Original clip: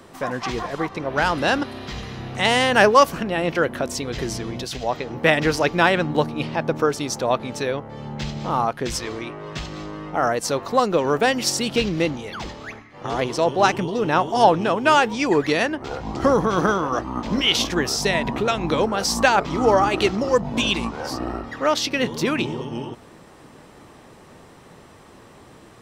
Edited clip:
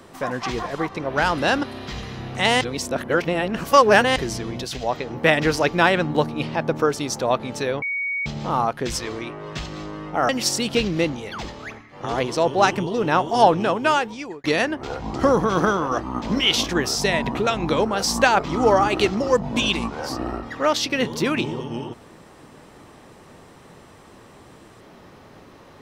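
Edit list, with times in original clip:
2.61–4.16 reverse
7.82–8.26 bleep 2240 Hz -22.5 dBFS
10.29–11.3 cut
14.69–15.45 fade out

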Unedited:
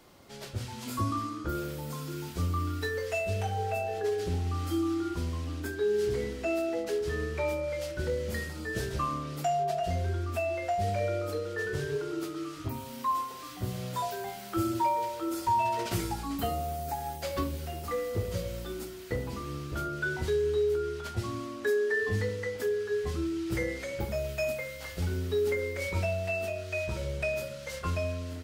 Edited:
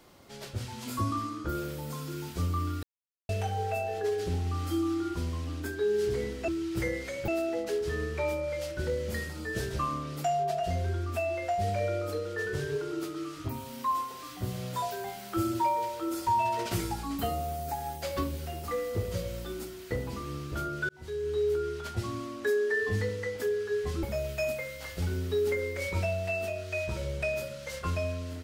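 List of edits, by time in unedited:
2.83–3.29 mute
20.09–20.69 fade in
23.23–24.03 move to 6.48

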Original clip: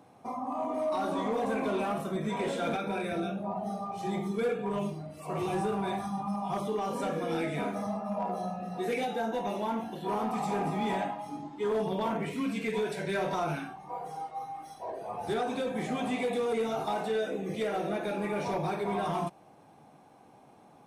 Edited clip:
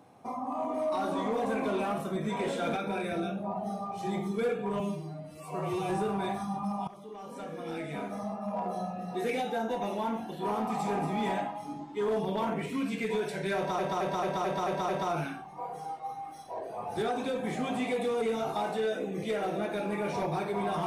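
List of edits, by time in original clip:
4.8–5.53 stretch 1.5×
6.51–8.42 fade in, from -18.5 dB
13.2 stutter 0.22 s, 7 plays

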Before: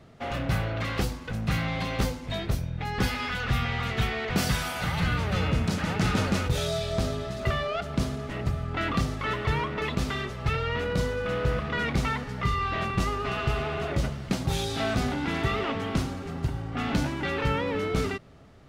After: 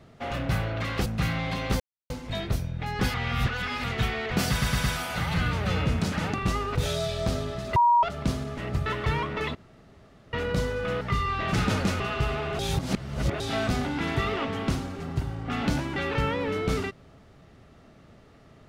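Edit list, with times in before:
1.06–1.35 cut
2.09 insert silence 0.30 s
3.13–3.83 reverse
4.5 stutter 0.11 s, 4 plays
6–6.47 swap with 12.86–13.27
7.48–7.75 bleep 953 Hz -16 dBFS
8.58–9.27 cut
9.96–10.74 room tone
11.42–12.34 cut
13.86–14.67 reverse

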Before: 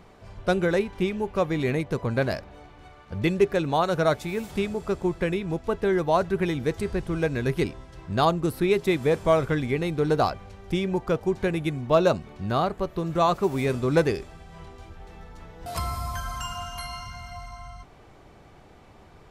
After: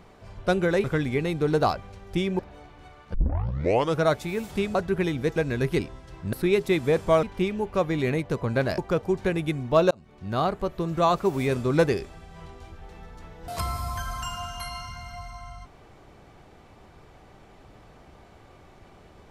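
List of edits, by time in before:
0.84–2.39 swap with 9.41–10.96
3.14 tape start 0.87 s
4.75–6.17 cut
6.78–7.21 cut
8.18–8.51 cut
12.09–12.64 fade in

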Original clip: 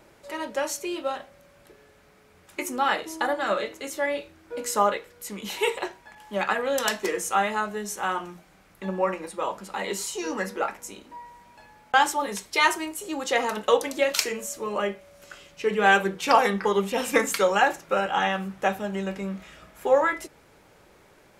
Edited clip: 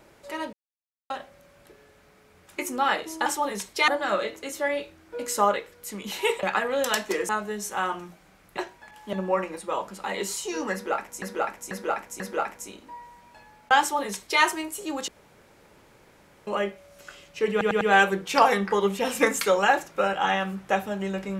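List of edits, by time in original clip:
0.53–1.1 mute
5.81–6.37 move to 8.83
7.23–7.55 cut
10.43–10.92 loop, 4 plays
12.03–12.65 copy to 3.26
13.31–14.7 room tone
15.74 stutter 0.10 s, 4 plays

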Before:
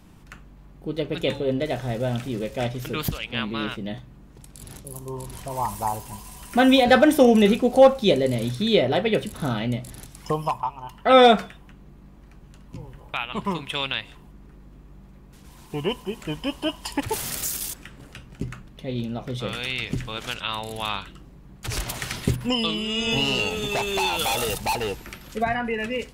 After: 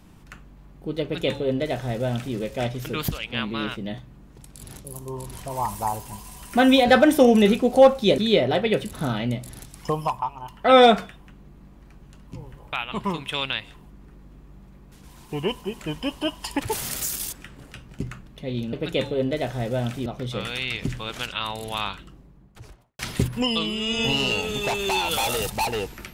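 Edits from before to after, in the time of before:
1.02–2.35 copy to 19.14
8.18–8.59 cut
20.92–22.07 studio fade out

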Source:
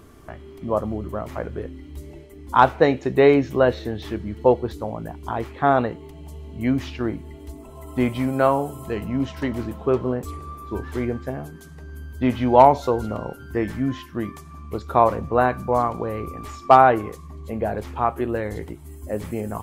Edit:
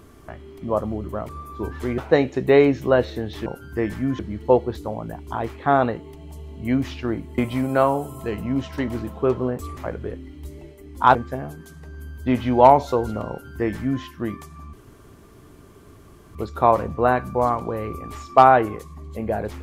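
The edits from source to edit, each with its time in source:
1.29–2.67 swap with 10.41–11.1
7.34–8.02 cut
13.24–13.97 copy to 4.15
14.68 insert room tone 1.62 s

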